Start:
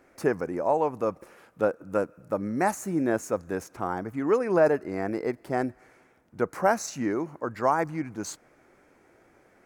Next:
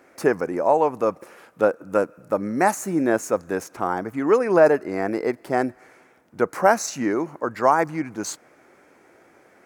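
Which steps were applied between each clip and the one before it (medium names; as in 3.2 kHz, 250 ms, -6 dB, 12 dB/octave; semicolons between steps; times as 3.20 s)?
high-pass 220 Hz 6 dB/octave; trim +6.5 dB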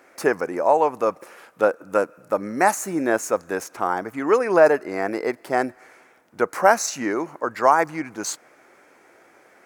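bass shelf 330 Hz -10 dB; trim +3 dB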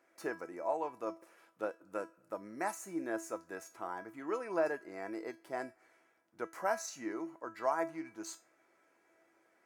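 feedback comb 330 Hz, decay 0.27 s, harmonics all, mix 80%; trim -7 dB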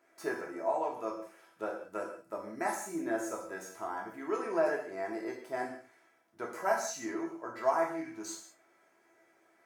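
gated-style reverb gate 220 ms falling, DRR -1 dB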